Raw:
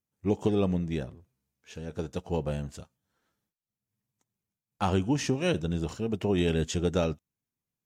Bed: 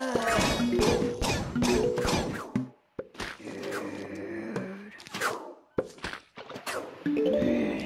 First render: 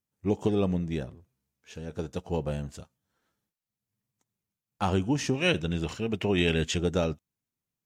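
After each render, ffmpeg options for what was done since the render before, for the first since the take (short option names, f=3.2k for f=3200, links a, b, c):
-filter_complex "[0:a]asettb=1/sr,asplit=3[a][b][c];[a]atrim=end=5.344[d];[b]atrim=start=5.34:end=6.78,asetpts=PTS-STARTPTS,afade=t=in:d=0.004:c=qsin,afade=t=out:st=1.436:d=0.004:c=qsin,equalizer=f=2.4k:w=1:g=9[e];[c]atrim=start=6.776[f];[d][e]acrossfade=d=0.004:c1=hsin:c2=qsin[g];[g][f]acrossfade=d=0.004:c1=qsin:c2=hsin"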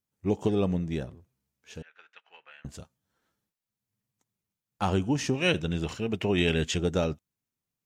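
-filter_complex "[0:a]asettb=1/sr,asplit=3[a][b][c];[a]atrim=end=1.824[d];[b]atrim=start=1.82:end=2.65,asetpts=PTS-STARTPTS,afade=t=in:d=0.004:c=qsin,afade=t=out:st=0.826:d=0.004:c=qsin,asuperpass=centerf=2000:order=4:qfactor=1.5[e];[c]atrim=start=2.646[f];[d][e]acrossfade=d=0.004:c1=hsin:c2=qsin[g];[g][f]acrossfade=d=0.004:c1=qsin:c2=hsin"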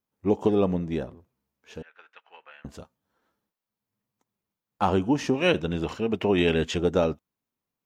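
-af "equalizer=f=125:t=o:w=1:g=-4,equalizer=f=250:t=o:w=1:g=4,equalizer=f=500:t=o:w=1:g=4,equalizer=f=1k:t=o:w=1:g=6,equalizer=f=8k:t=o:w=1:g=-6"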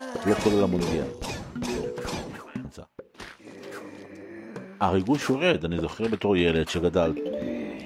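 -filter_complex "[1:a]volume=-5dB[a];[0:a][a]amix=inputs=2:normalize=0"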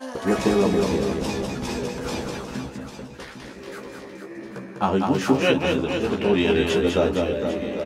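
-filter_complex "[0:a]asplit=2[a][b];[b]adelay=15,volume=-4dB[c];[a][c]amix=inputs=2:normalize=0,aecho=1:1:200|460|798|1237|1809:0.631|0.398|0.251|0.158|0.1"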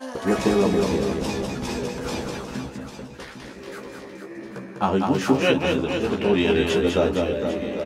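-af anull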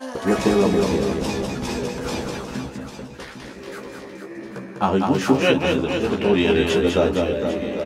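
-af "volume=2dB"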